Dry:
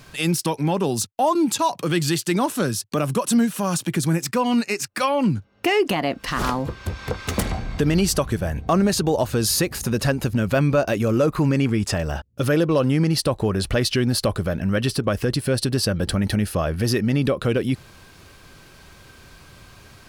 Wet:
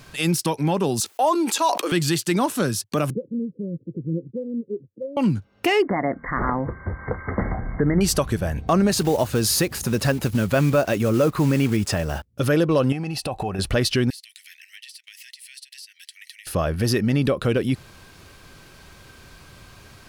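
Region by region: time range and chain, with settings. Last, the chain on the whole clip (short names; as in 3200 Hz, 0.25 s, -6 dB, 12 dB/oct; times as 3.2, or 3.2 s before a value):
1–1.92 inverse Chebyshev high-pass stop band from 160 Hz + sustainer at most 74 dB/s
3.1–5.17 Chebyshev low-pass 530 Hz, order 8 + tilt +3 dB/oct + phaser 1.8 Hz, delay 1.7 ms, feedback 39%
5.82–8.01 brick-wall FIR low-pass 2200 Hz + de-hum 79.56 Hz, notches 3
8.91–12.27 block floating point 5-bit + HPF 58 Hz
12.92–13.59 compressor, threshold -25 dBFS + small resonant body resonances 760/2600 Hz, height 17 dB, ringing for 40 ms
14.1–16.47 Chebyshev high-pass 1900 Hz, order 6 + compressor, threshold -39 dBFS
whole clip: dry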